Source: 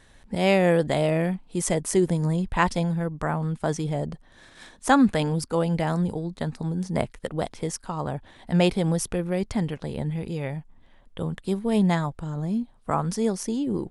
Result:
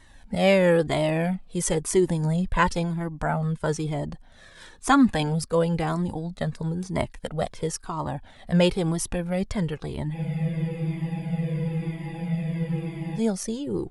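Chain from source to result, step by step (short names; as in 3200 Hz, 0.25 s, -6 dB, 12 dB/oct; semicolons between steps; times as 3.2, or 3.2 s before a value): spectral freeze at 10.18, 2.99 s; cascading flanger falling 1 Hz; gain +5 dB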